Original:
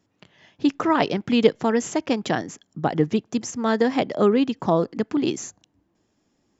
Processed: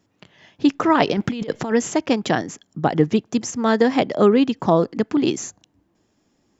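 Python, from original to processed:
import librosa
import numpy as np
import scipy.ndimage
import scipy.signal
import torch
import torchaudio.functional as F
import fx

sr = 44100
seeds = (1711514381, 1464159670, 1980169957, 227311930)

y = fx.over_compress(x, sr, threshold_db=-28.0, ratio=-1.0, at=(1.08, 1.72))
y = y * librosa.db_to_amplitude(3.5)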